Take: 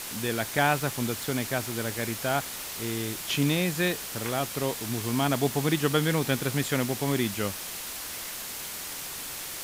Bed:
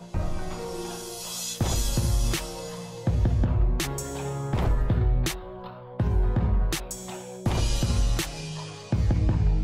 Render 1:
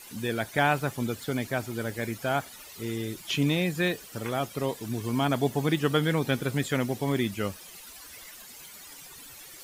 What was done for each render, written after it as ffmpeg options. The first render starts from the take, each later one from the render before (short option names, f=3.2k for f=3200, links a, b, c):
-af "afftdn=nr=14:nf=-37"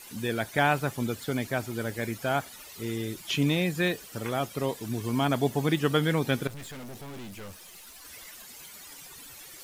-filter_complex "[0:a]asettb=1/sr,asplit=3[a][b][c];[a]atrim=end=6.474[d];[b]atrim=start=6.47:end=8.05,asetpts=PTS-STARTPTS,afade=t=in:d=0.004:c=qsin,afade=t=out:st=1.576:d=0.004:c=qsin,aeval=exprs='(tanh(100*val(0)+0.4)-tanh(0.4))/100':c=same[e];[c]atrim=start=8.046[f];[d][e]acrossfade=d=0.004:c1=hsin:c2=qsin[g];[g][f]acrossfade=d=0.004:c1=qsin:c2=hsin"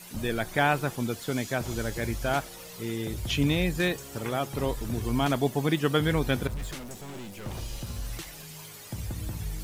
-filter_complex "[1:a]volume=-12dB[a];[0:a][a]amix=inputs=2:normalize=0"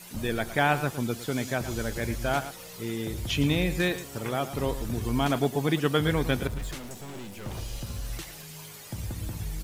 -af "aecho=1:1:110:0.224"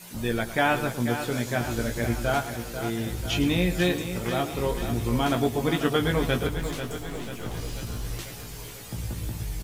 -filter_complex "[0:a]asplit=2[a][b];[b]adelay=17,volume=-5dB[c];[a][c]amix=inputs=2:normalize=0,aecho=1:1:491|982|1473|1964|2455|2946|3437:0.335|0.194|0.113|0.0654|0.0379|0.022|0.0128"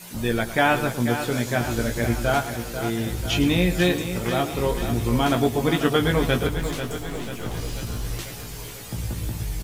-af "volume=3.5dB"